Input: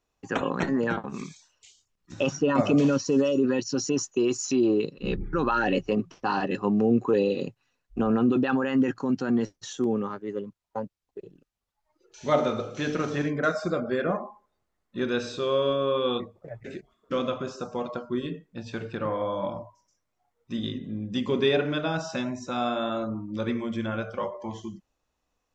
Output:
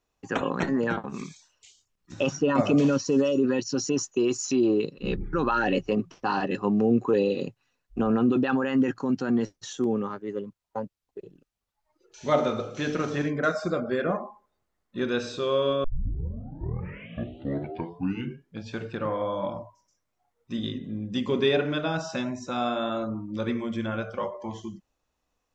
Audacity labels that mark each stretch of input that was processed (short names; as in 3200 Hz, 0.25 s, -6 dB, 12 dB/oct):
15.840000	15.840000	tape start 2.93 s